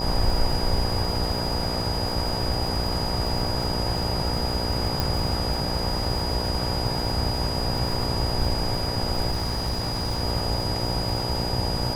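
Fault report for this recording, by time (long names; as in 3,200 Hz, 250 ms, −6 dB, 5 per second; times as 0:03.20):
mains buzz 60 Hz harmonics 16 −30 dBFS
surface crackle 160 per second −32 dBFS
whistle 4,900 Hz −30 dBFS
0:05.00: click
0:09.31–0:10.22: clipping −22 dBFS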